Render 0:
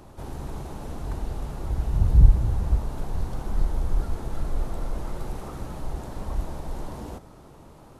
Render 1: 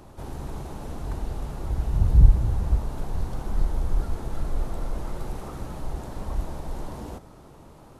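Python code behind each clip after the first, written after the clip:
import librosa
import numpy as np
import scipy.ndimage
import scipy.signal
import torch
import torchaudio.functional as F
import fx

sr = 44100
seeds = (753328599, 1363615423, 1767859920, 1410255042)

y = x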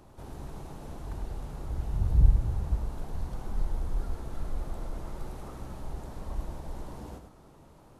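y = x + 10.0 ** (-8.0 / 20.0) * np.pad(x, (int(104 * sr / 1000.0), 0))[:len(x)]
y = y * librosa.db_to_amplitude(-7.0)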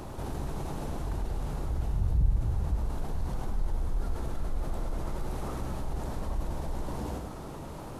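y = fx.env_flatten(x, sr, amount_pct=50)
y = y * librosa.db_to_amplitude(-6.5)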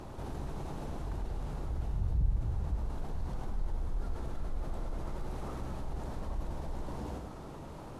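y = fx.high_shelf(x, sr, hz=9900.0, db=-10.5)
y = y * librosa.db_to_amplitude(-4.5)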